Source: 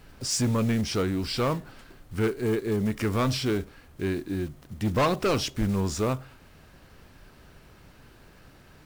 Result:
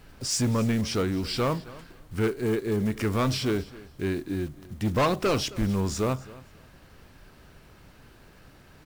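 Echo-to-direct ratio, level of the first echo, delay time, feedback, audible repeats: −20.0 dB, −20.0 dB, 267 ms, 20%, 2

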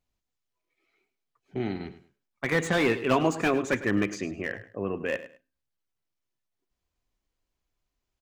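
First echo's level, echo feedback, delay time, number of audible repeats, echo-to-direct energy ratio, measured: −14.5 dB, 23%, 104 ms, 2, −14.5 dB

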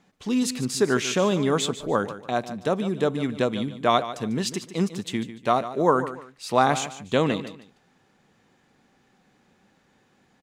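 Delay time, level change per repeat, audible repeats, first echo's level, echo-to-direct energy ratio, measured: 147 ms, −11.0 dB, 2, −13.0 dB, −12.5 dB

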